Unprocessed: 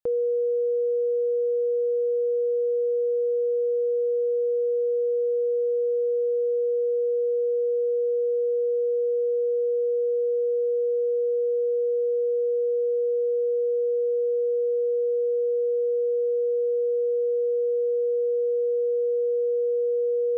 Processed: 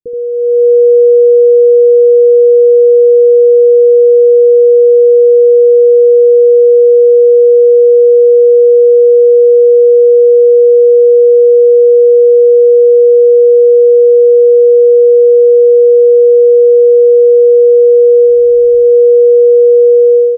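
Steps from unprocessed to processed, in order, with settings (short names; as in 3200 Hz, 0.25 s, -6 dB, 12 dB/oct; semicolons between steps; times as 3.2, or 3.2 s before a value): 18.25–18.83 spectral whitening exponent 0.1; steep low-pass 510 Hz 96 dB/oct; AGC gain up to 13.5 dB; on a send: early reflections 18 ms -10.5 dB, 77 ms -5.5 dB; on the sum: gain +4 dB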